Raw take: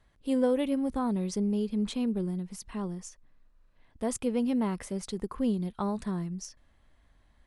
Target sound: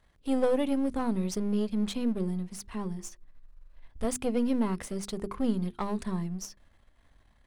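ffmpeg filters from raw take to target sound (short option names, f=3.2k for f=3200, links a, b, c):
-filter_complex "[0:a]aeval=exprs='if(lt(val(0),0),0.447*val(0),val(0))':c=same,asettb=1/sr,asplit=3[a][b][c];[a]atrim=end=2.844[d];[b]atrim=start=2.84:end=4.05,asetpts=PTS-STARTPTS,afade=t=in:d=0.004:c=qsin,afade=t=out:st=1.206:d=0.004:c=qsin,asubboost=boost=8.5:cutoff=110[e];[c]atrim=start=4.046[f];[d][e]acrossfade=d=0.004:c1=hsin:c2=qsin[g];[g][f]acrossfade=d=0.004:c1=qsin:c2=hsin,bandreject=f=50:t=h:w=6,bandreject=f=100:t=h:w=6,bandreject=f=150:t=h:w=6,bandreject=f=200:t=h:w=6,bandreject=f=250:t=h:w=6,bandreject=f=300:t=h:w=6,bandreject=f=350:t=h:w=6,bandreject=f=400:t=h:w=6,volume=4dB"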